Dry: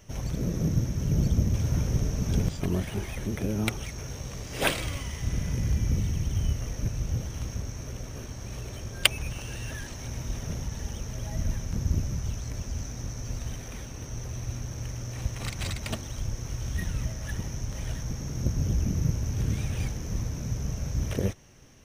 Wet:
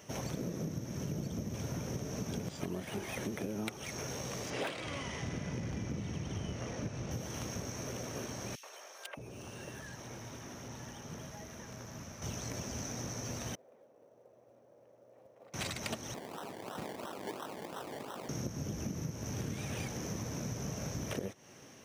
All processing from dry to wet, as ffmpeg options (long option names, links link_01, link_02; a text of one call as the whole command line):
ffmpeg -i in.wav -filter_complex "[0:a]asettb=1/sr,asplit=3[link_01][link_02][link_03];[link_01]atrim=end=4.504[link_04];[link_02]atrim=start=4.5:end=7.11,asetpts=PTS-STARTPTS,afade=type=in:duration=0.004:curve=qsin,afade=type=out:start_time=2.606:duration=0.004:curve=qsin,adynamicsmooth=sensitivity=2:basefreq=5500,asoftclip=type=hard:threshold=-20dB[link_05];[link_03]atrim=start=7.106[link_06];[link_04][link_05]acrossfade=duration=0.004:curve1=hsin:curve2=qsin[link_07];[link_07][link_06]acrossfade=duration=0.004:curve1=qsin:curve2=hsin,asettb=1/sr,asplit=3[link_08][link_09][link_10];[link_08]atrim=end=8.554[link_11];[link_09]atrim=start=8.55:end=12.22,asetpts=PTS-STARTPTS,afade=type=in:duration=0.004:curve=qsin,afade=type=out:start_time=3.666:duration=0.004:curve=qsin,acrossover=split=590|1600|3500[link_12][link_13][link_14][link_15];[link_12]acompressor=threshold=-41dB:ratio=3[link_16];[link_13]acompressor=threshold=-57dB:ratio=3[link_17];[link_14]acompressor=threshold=-59dB:ratio=3[link_18];[link_15]acompressor=threshold=-59dB:ratio=3[link_19];[link_16][link_17][link_18][link_19]amix=inputs=4:normalize=0,asoftclip=type=hard:threshold=-33.5dB,acrossover=split=560|2400[link_20][link_21][link_22];[link_21]adelay=80[link_23];[link_20]adelay=620[link_24];[link_24][link_23][link_22]amix=inputs=3:normalize=0,atrim=end_sample=161847[link_25];[link_10]atrim=start=12.216[link_26];[link_11][link_25]acrossfade=duration=0.004:curve1=hsin:curve2=qsin[link_27];[link_27][link_26]acrossfade=duration=0.004:curve1=qsin:curve2=hsin,asettb=1/sr,asplit=3[link_28][link_29][link_30];[link_28]atrim=end=13.554[link_31];[link_29]atrim=start=13.55:end=15.54,asetpts=PTS-STARTPTS,afade=type=in:duration=0.004:curve=qsin,afade=type=out:start_time=1.986:duration=0.004:curve=qsin,lowpass=frequency=550:width_type=q:width=3.4,aderivative,acrusher=bits=6:mode=log:mix=0:aa=0.000001[link_32];[link_30]atrim=start=15.536[link_33];[link_31][link_32]acrossfade=duration=0.004:curve1=hsin:curve2=qsin[link_34];[link_34][link_33]acrossfade=duration=0.004:curve1=qsin:curve2=hsin,asettb=1/sr,asplit=3[link_35][link_36][link_37];[link_35]atrim=end=16.144[link_38];[link_36]atrim=start=16.14:end=18.29,asetpts=PTS-STARTPTS,afade=type=in:duration=0.004:curve=qsin,afade=type=out:start_time=2.146:duration=0.004:curve=qsin,highpass=frequency=1100:width=0.5412,highpass=frequency=1100:width=1.3066,acrusher=samples=27:mix=1:aa=0.000001:lfo=1:lforange=16.2:lforate=2.9[link_39];[link_37]atrim=start=18.286[link_40];[link_38][link_39]acrossfade=duration=0.004:curve1=hsin:curve2=qsin[link_41];[link_41][link_40]acrossfade=duration=0.004:curve1=qsin:curve2=hsin,highpass=170,equalizer=frequency=680:width=0.61:gain=3,acompressor=threshold=-36dB:ratio=12,volume=1.5dB" out.wav